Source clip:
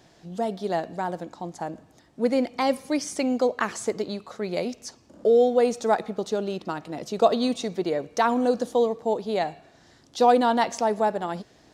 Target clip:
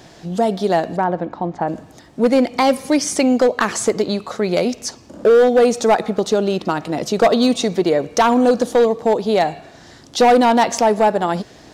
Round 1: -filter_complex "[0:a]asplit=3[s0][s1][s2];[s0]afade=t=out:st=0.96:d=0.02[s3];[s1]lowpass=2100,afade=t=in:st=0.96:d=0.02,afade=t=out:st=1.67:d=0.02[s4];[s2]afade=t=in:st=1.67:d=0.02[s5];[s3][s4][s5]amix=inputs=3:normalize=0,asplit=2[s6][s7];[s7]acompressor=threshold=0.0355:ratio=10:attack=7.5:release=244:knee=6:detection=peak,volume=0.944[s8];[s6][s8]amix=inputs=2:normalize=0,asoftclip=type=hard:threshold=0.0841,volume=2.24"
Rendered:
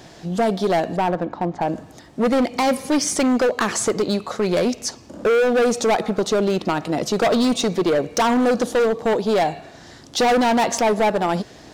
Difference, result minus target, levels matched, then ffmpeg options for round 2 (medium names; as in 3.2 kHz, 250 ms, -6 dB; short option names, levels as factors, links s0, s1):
hard clipper: distortion +8 dB
-filter_complex "[0:a]asplit=3[s0][s1][s2];[s0]afade=t=out:st=0.96:d=0.02[s3];[s1]lowpass=2100,afade=t=in:st=0.96:d=0.02,afade=t=out:st=1.67:d=0.02[s4];[s2]afade=t=in:st=1.67:d=0.02[s5];[s3][s4][s5]amix=inputs=3:normalize=0,asplit=2[s6][s7];[s7]acompressor=threshold=0.0355:ratio=10:attack=7.5:release=244:knee=6:detection=peak,volume=0.944[s8];[s6][s8]amix=inputs=2:normalize=0,asoftclip=type=hard:threshold=0.188,volume=2.24"